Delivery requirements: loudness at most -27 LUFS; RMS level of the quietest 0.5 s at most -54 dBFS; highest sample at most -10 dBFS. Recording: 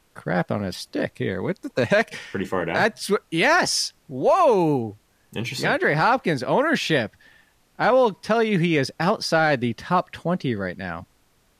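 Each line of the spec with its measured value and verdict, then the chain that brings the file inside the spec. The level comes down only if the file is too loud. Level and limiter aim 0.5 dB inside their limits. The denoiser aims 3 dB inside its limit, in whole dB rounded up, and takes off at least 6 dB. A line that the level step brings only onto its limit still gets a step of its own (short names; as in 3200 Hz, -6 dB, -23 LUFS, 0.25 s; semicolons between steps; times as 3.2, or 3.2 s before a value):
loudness -22.0 LUFS: fail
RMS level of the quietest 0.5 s -62 dBFS: OK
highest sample -9.0 dBFS: fail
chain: gain -5.5 dB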